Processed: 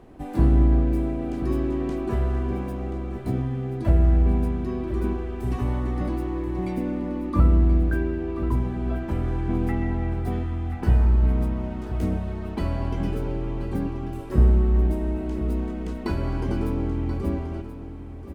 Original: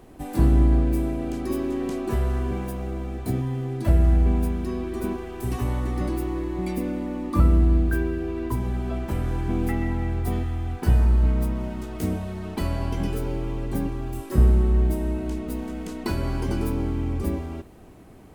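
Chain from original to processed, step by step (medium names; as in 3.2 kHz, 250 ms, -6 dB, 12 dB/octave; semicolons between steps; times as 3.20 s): low-pass 2.4 kHz 6 dB/octave; delay 1031 ms -12 dB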